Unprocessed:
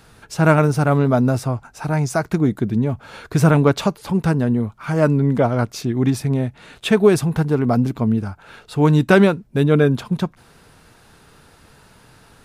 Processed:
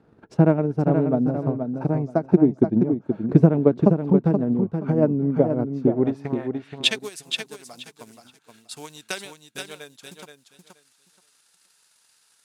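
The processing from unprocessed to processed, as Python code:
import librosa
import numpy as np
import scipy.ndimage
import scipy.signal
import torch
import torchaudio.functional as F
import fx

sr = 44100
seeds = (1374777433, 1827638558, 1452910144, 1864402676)

p1 = fx.quant_companded(x, sr, bits=8)
p2 = fx.transient(p1, sr, attack_db=12, sustain_db=-5)
p3 = fx.dynamic_eq(p2, sr, hz=1300.0, q=1.6, threshold_db=-28.0, ratio=4.0, max_db=-6)
p4 = fx.filter_sweep_bandpass(p3, sr, from_hz=310.0, to_hz=7700.0, start_s=5.84, end_s=7.11, q=1.1)
p5 = p4 + fx.echo_feedback(p4, sr, ms=476, feedback_pct=19, wet_db=-6.5, dry=0)
y = F.gain(torch.from_numpy(p5), -3.0).numpy()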